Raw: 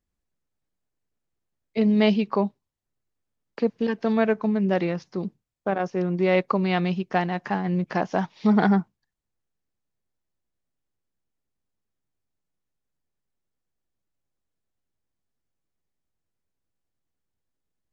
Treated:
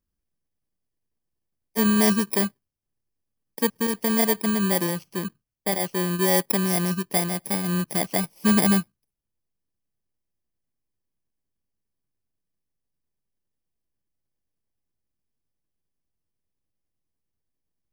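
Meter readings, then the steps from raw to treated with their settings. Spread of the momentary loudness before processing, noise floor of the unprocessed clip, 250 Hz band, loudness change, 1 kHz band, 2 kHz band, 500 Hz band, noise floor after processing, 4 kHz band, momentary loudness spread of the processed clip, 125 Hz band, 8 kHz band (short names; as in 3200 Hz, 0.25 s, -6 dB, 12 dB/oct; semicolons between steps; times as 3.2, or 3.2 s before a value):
9 LU, -82 dBFS, -0.5 dB, +1.5 dB, -2.5 dB, +1.0 dB, -2.5 dB, -82 dBFS, +6.5 dB, 9 LU, -0.5 dB, n/a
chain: FFT order left unsorted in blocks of 32 samples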